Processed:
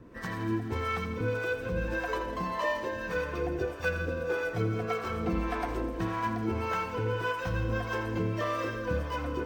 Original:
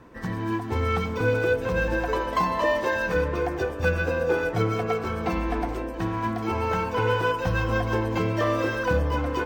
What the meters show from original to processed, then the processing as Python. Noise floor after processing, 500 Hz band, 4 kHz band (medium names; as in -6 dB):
-38 dBFS, -7.5 dB, -6.0 dB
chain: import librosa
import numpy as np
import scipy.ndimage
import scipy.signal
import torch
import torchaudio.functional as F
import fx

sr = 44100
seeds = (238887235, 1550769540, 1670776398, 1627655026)

y = fx.peak_eq(x, sr, hz=830.0, db=-6.0, octaves=0.3)
y = fx.rider(y, sr, range_db=4, speed_s=0.5)
y = fx.harmonic_tremolo(y, sr, hz=1.7, depth_pct=70, crossover_hz=520.0)
y = fx.echo_thinned(y, sr, ms=83, feedback_pct=76, hz=420.0, wet_db=-11.5)
y = y * 10.0 ** (-3.0 / 20.0)